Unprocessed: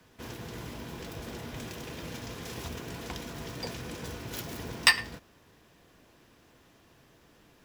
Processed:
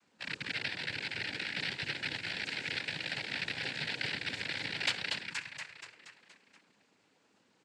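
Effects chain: rattle on loud lows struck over -41 dBFS, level -10 dBFS; frequency-shifting echo 237 ms, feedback 56%, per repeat -32 Hz, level -5 dB; AM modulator 100 Hz, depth 40%; touch-sensitive flanger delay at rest 4.3 ms, full sweep at -24.5 dBFS; noise-vocoded speech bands 8; trim -5.5 dB

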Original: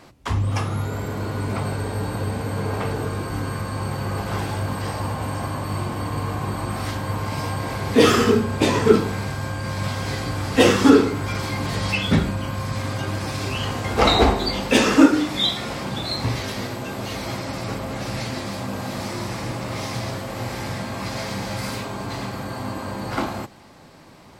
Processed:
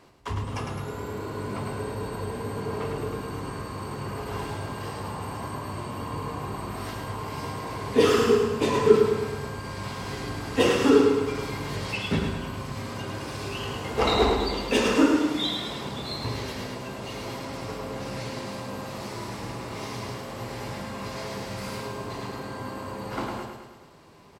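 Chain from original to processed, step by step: small resonant body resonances 420/1000/2800 Hz, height 8 dB; on a send: feedback delay 106 ms, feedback 55%, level -5 dB; on the sum: trim -8.5 dB

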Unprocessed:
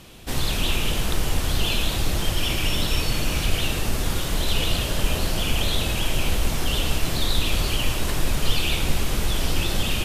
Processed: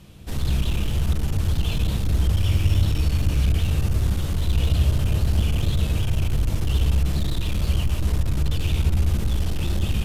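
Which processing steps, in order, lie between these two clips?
bass shelf 350 Hz +5.5 dB; hard clipper -14.5 dBFS, distortion -10 dB; on a send: reverberation RT60 1.4 s, pre-delay 3 ms, DRR 7 dB; on the sum: trim -8 dB

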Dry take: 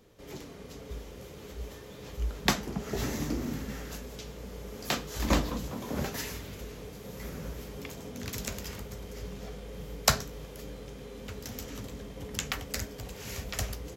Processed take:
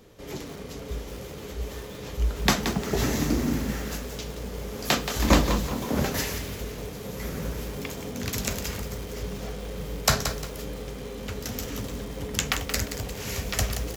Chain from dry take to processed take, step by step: loudness maximiser +8 dB; bit-crushed delay 176 ms, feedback 35%, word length 6-bit, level -8 dB; trim -1 dB

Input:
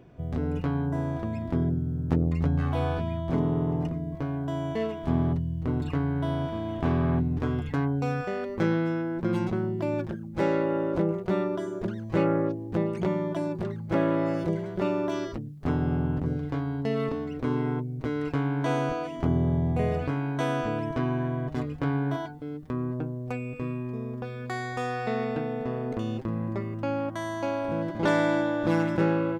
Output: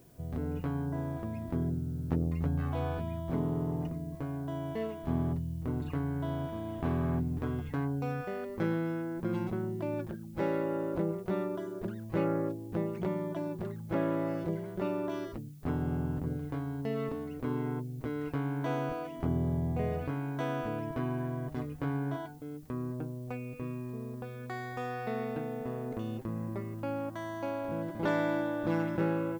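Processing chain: treble shelf 4.8 kHz -9 dB; added noise blue -60 dBFS; trim -6 dB

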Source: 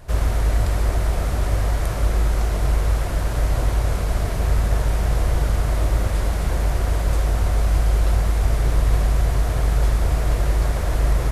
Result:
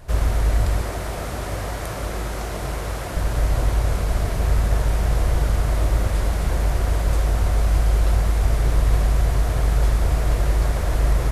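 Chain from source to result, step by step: 0.81–3.17 s: high-pass 160 Hz 6 dB/octave

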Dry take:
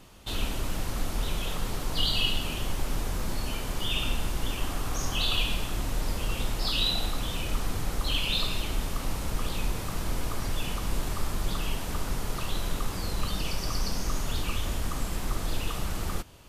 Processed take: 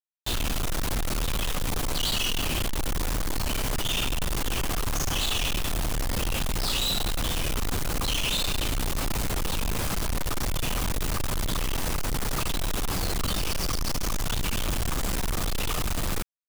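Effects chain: companded quantiser 2-bit

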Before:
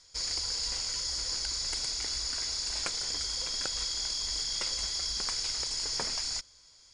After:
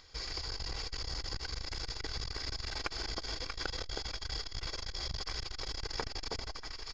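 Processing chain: band-stop 720 Hz, Q 22; in parallel at +1 dB: compression, threshold -46 dBFS, peak gain reduction 16 dB; on the sum: companded quantiser 6-bit; distance through air 230 m; comb 2.6 ms, depth 34%; echo whose repeats swap between lows and highs 318 ms, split 1 kHz, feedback 74%, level -2 dB; upward compressor, threshold -59 dBFS; on a send at -11 dB: tilt shelf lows +5.5 dB + reverberation RT60 0.55 s, pre-delay 80 ms; on the sum: transformer saturation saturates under 300 Hz; trim +1 dB

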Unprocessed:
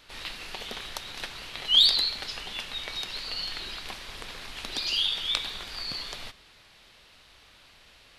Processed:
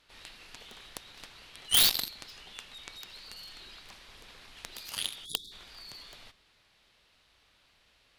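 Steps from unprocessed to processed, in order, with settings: Chebyshev shaper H 7 -16 dB, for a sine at -4.5 dBFS; spectral selection erased 5.25–5.52 s, 450–3300 Hz; wavefolder -21.5 dBFS; trim +8.5 dB

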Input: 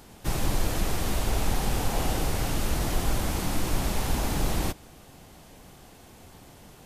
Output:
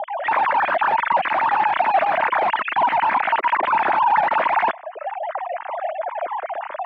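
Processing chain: formants replaced by sine waves; reverb removal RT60 0.96 s; in parallel at -9.5 dB: sine folder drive 18 dB, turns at -11 dBFS; on the sum: cabinet simulation 250–2100 Hz, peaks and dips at 450 Hz -8 dB, 650 Hz +7 dB, 940 Hz +6 dB

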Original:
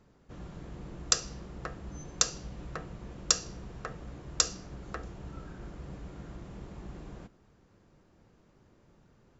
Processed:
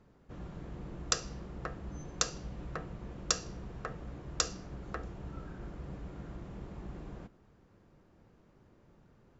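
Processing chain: treble shelf 4.1 kHz -8.5 dB

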